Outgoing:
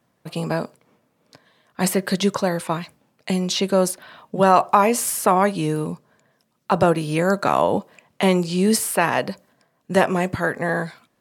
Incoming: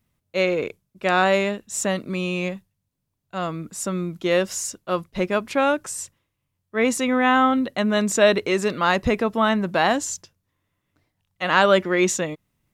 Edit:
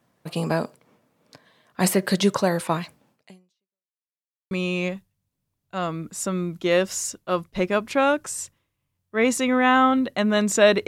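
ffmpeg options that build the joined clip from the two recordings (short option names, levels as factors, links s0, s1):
-filter_complex "[0:a]apad=whole_dur=10.87,atrim=end=10.87,asplit=2[s0][s1];[s0]atrim=end=3.91,asetpts=PTS-STARTPTS,afade=t=out:st=3.12:d=0.79:c=exp[s2];[s1]atrim=start=3.91:end=4.51,asetpts=PTS-STARTPTS,volume=0[s3];[1:a]atrim=start=2.11:end=8.47,asetpts=PTS-STARTPTS,afade=t=in:d=0.004:c=hsin[s4];[s2][s3][s4]concat=n=3:v=0:a=1"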